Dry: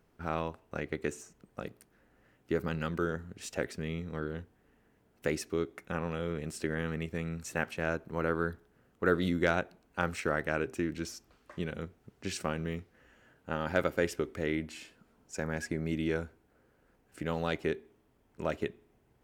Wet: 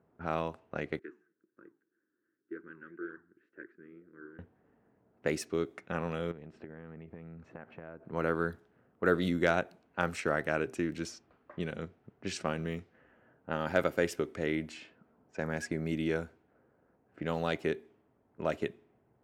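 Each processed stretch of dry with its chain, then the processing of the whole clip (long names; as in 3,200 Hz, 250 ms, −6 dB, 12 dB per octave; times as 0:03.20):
0:00.99–0:04.39: one scale factor per block 7 bits + pair of resonant band-passes 730 Hz, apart 2.2 octaves + flanger 1.9 Hz, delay 0.9 ms, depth 8.9 ms, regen −82%
0:06.31–0:08.03: low-pass filter 1,300 Hz 6 dB per octave + downward compressor 12 to 1, threshold −41 dBFS
whole clip: low-pass that shuts in the quiet parts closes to 1,200 Hz, open at −30.5 dBFS; high-pass filter 98 Hz 12 dB per octave; parametric band 660 Hz +3 dB 0.29 octaves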